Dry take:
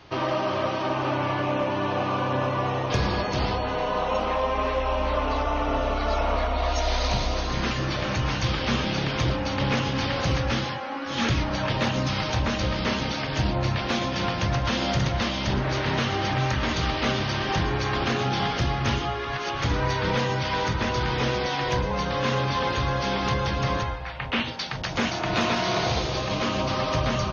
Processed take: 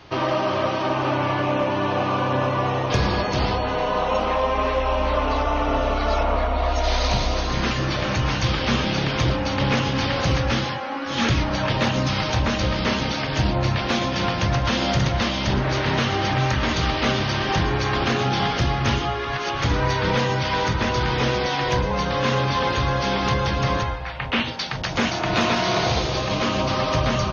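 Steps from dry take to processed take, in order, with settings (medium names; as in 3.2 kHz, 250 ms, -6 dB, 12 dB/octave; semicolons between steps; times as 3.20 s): 6.23–6.84 s: treble shelf 3.2 kHz -8 dB; trim +3.5 dB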